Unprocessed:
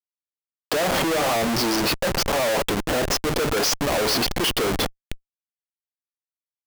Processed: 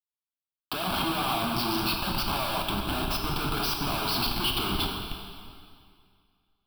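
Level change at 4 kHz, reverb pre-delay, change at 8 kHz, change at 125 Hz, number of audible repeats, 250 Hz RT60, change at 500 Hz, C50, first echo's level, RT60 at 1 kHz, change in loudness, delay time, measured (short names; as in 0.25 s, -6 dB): -4.0 dB, 8 ms, -12.0 dB, -3.0 dB, none, 2.1 s, -13.0 dB, 3.0 dB, none, 2.2 s, -6.0 dB, none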